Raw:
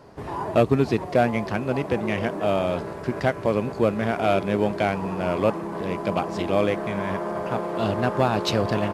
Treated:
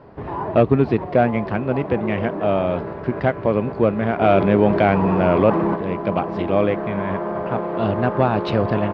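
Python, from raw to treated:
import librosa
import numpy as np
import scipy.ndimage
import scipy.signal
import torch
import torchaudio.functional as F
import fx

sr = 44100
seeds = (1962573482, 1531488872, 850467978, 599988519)

y = fx.air_absorb(x, sr, metres=370.0)
y = fx.env_flatten(y, sr, amount_pct=50, at=(4.2, 5.74), fade=0.02)
y = y * 10.0 ** (4.5 / 20.0)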